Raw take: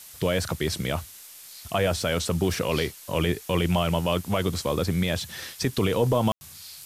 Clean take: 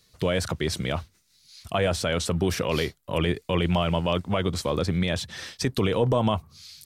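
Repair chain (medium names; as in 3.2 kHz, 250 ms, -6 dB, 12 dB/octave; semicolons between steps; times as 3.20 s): room tone fill 6.32–6.41 s; noise print and reduce 14 dB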